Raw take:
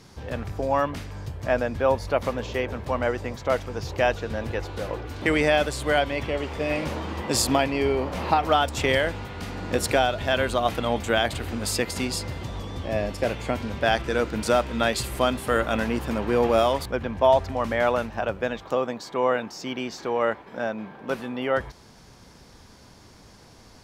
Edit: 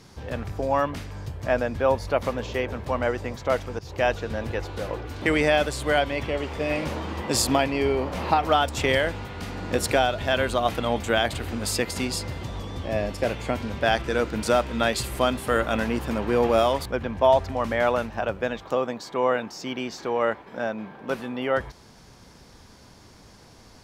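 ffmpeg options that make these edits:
-filter_complex "[0:a]asplit=2[a][b];[a]atrim=end=3.79,asetpts=PTS-STARTPTS,afade=t=out:st=3.786:d=0.004:c=hsin:silence=0.199526[c];[b]atrim=start=3.79,asetpts=PTS-STARTPTS,afade=t=in:d=0.37:c=qsin:silence=0.199526[d];[c][d]concat=n=2:v=0:a=1"

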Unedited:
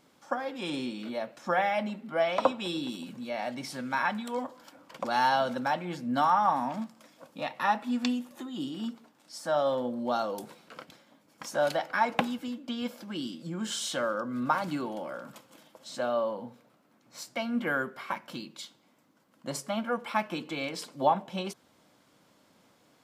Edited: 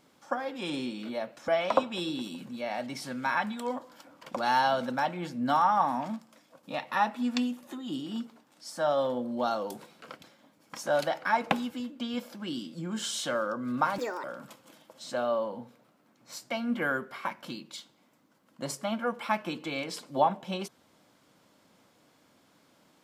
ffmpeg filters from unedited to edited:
-filter_complex "[0:a]asplit=5[a][b][c][d][e];[a]atrim=end=1.482[f];[b]atrim=start=2.158:end=7.31,asetpts=PTS-STARTPTS,afade=t=out:st=4.572:d=0.58:silence=0.473151[g];[c]atrim=start=7.31:end=14.664,asetpts=PTS-STARTPTS,afade=t=in:d=0.004:c=hsin:silence=0.473151[h];[d]atrim=start=14.66:end=15.09,asetpts=PTS-STARTPTS,asetrate=73647,aresample=44100,atrim=end_sample=11355,asetpts=PTS-STARTPTS[i];[e]atrim=start=15.086[j];[g][h]concat=n=2:v=0:a=1[k];[f][k]acrossfade=d=0.004:c1=hsin:c2=hsin[l];[l][i]acrossfade=d=0.004:c1=hsin:c2=hsin[m];[m][j]acrossfade=d=0.004:c1=hsin:c2=hsin"

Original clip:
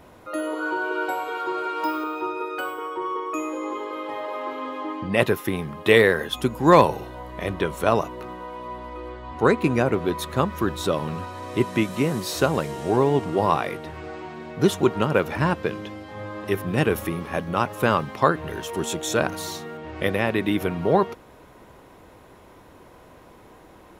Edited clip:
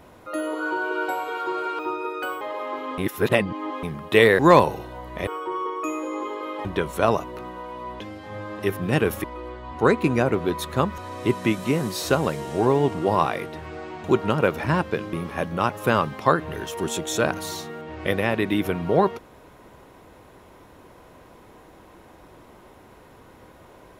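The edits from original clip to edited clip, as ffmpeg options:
-filter_complex "[0:a]asplit=13[a][b][c][d][e][f][g][h][i][j][k][l][m];[a]atrim=end=1.792[n];[b]atrim=start=2.148:end=2.772[o];[c]atrim=start=4.148:end=4.722[p];[d]atrim=start=4.718:end=5.572,asetpts=PTS-STARTPTS,areverse[q];[e]atrim=start=5.568:end=6.132[r];[f]atrim=start=6.608:end=7.492[s];[g]atrim=start=2.768:end=4.152[t];[h]atrim=start=7.488:end=8.842[u];[i]atrim=start=15.848:end=17.092[v];[j]atrim=start=8.838:end=10.582[w];[k]atrim=start=11.288:end=14.352[x];[l]atrim=start=14.758:end=15.852[y];[m]atrim=start=17.088[z];[n][o]acrossfade=d=0.004:c1=hsin:c2=hsin[aa];[aa][p]acrossfade=d=0.004:c1=hsin:c2=hsin[ab];[ab][q]acrossfade=d=0.004:c1=hsin:c2=hsin[ac];[ac][r]acrossfade=d=0.004:c1=hsin:c2=hsin[ad];[ad][s]acrossfade=d=0.004:c1=hsin:c2=hsin[ae];[ae][t]acrossfade=d=0.004:c1=hsin:c2=hsin[af];[af][u]acrossfade=d=0.004:c1=hsin:c2=hsin[ag];[ag][v]acrossfade=d=0.004:c1=hsin:c2=hsin[ah];[ah][w]acrossfade=d=0.004:c1=hsin:c2=hsin[ai];[ai][x]acrossfade=d=0.004:c1=hsin:c2=hsin[aj];[aj][y]acrossfade=d=0.004:c1=hsin:c2=hsin[ak];[ak][z]acrossfade=d=0.004:c1=hsin:c2=hsin"

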